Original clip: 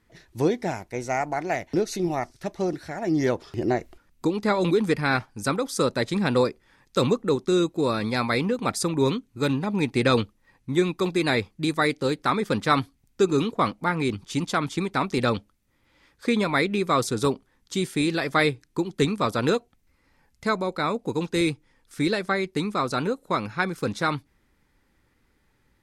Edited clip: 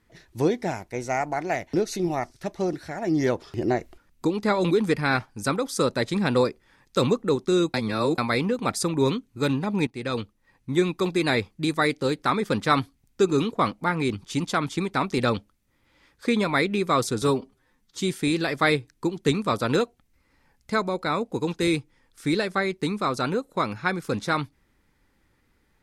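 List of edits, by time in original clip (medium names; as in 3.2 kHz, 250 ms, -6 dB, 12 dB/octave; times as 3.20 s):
7.74–8.18 s: reverse
9.87–10.74 s: fade in, from -16 dB
17.22–17.75 s: stretch 1.5×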